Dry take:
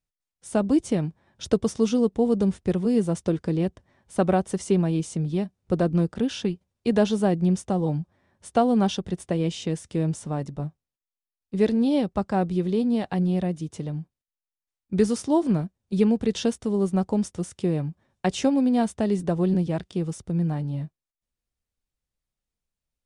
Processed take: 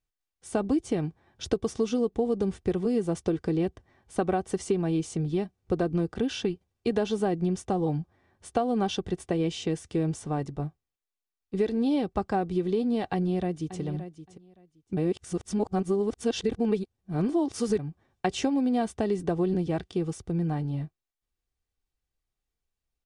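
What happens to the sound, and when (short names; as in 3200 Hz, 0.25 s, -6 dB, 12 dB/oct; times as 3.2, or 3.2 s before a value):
13.13–13.8 echo throw 0.57 s, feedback 15%, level -13 dB
14.97–17.79 reverse
whole clip: high shelf 8200 Hz -7.5 dB; comb 2.6 ms, depth 38%; compressor, threshold -22 dBFS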